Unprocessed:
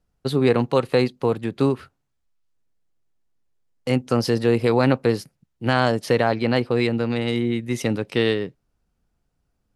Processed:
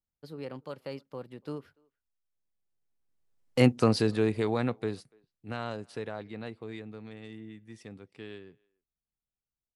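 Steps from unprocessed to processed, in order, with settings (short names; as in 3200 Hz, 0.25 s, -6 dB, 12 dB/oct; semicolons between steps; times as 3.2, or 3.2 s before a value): Doppler pass-by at 3.59, 28 m/s, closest 7.6 m; speakerphone echo 0.29 s, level -29 dB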